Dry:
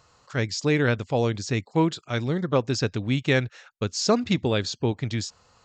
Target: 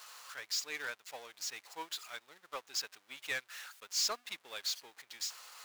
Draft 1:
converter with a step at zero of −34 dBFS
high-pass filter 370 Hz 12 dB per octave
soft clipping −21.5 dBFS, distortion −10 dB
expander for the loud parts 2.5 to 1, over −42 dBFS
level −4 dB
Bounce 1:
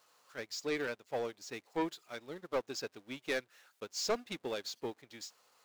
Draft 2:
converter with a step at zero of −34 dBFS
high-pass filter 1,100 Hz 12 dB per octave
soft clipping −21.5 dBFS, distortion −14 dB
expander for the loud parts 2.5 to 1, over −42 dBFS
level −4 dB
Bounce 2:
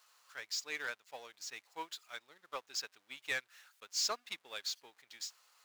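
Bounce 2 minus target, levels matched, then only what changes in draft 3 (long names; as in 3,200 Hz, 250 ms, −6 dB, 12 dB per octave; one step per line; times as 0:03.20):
converter with a step at zero: distortion −6 dB
change: converter with a step at zero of −26.5 dBFS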